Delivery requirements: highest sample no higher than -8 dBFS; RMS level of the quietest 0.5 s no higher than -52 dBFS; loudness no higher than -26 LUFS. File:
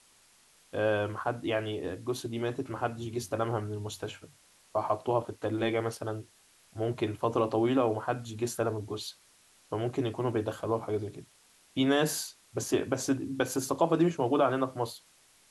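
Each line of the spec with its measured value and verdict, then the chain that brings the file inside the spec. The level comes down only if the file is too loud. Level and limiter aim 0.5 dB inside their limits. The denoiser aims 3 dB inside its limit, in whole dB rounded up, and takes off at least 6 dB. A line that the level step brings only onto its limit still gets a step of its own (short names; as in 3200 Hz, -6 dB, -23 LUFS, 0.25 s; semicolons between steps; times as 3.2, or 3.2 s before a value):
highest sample -12.5 dBFS: OK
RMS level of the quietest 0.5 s -62 dBFS: OK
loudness -31.5 LUFS: OK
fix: none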